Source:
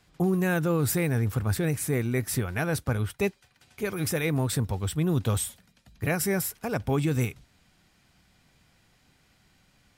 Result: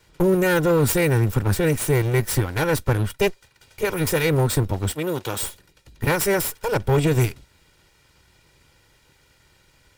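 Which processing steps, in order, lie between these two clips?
minimum comb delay 2.1 ms; 4.92–5.43 HPF 600 Hz 6 dB/oct; gain +7 dB

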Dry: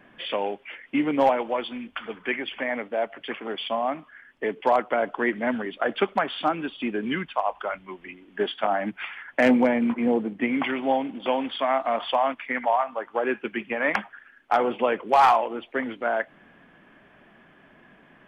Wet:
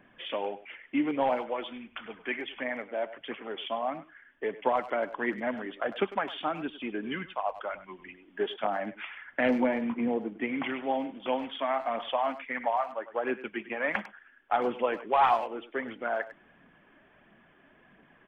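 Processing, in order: phaser 1.5 Hz, delay 3.6 ms, feedback 33%; downsampling 8000 Hz; speakerphone echo 0.1 s, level -14 dB; gain -6.5 dB

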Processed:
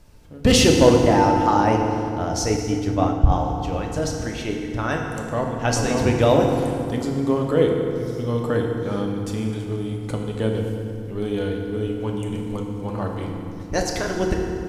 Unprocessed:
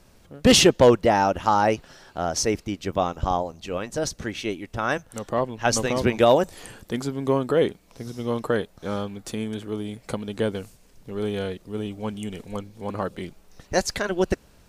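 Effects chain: low shelf 150 Hz +9.5 dB; FDN reverb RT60 2.6 s, low-frequency decay 1.5×, high-frequency decay 0.65×, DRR 0.5 dB; 2.57–3.32 three-band expander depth 100%; gain -2.5 dB

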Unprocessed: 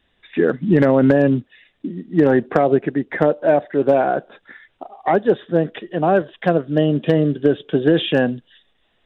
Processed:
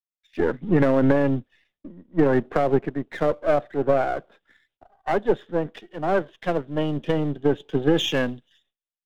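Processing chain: half-wave gain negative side -7 dB; gate with hold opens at -46 dBFS; three-band expander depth 70%; gain -3 dB

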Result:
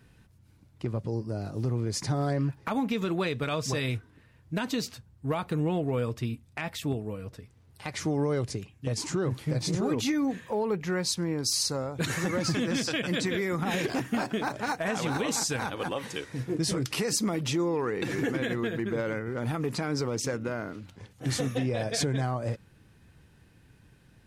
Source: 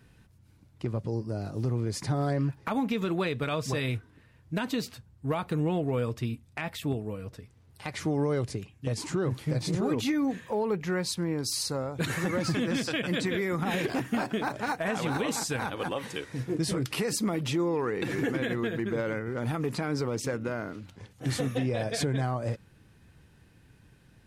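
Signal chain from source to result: dynamic EQ 6000 Hz, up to +6 dB, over -50 dBFS, Q 1.5

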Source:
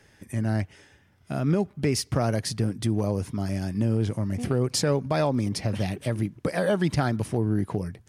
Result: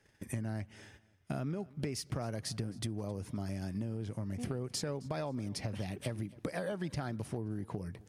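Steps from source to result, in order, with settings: gate -55 dBFS, range -13 dB; compressor 10:1, threshold -34 dBFS, peak gain reduction 15.5 dB; feedback echo 0.265 s, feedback 32%, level -22.5 dB

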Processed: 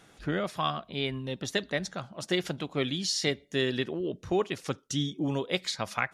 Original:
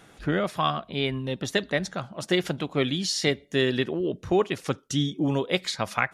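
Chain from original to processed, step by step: bell 5500 Hz +3.5 dB 1.4 oct; gain -5 dB

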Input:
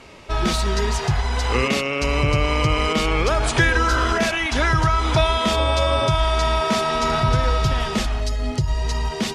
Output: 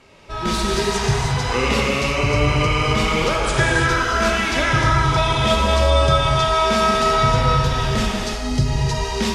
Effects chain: AGC gain up to 9 dB; non-linear reverb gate 0.37 s flat, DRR -2.5 dB; gain -7.5 dB

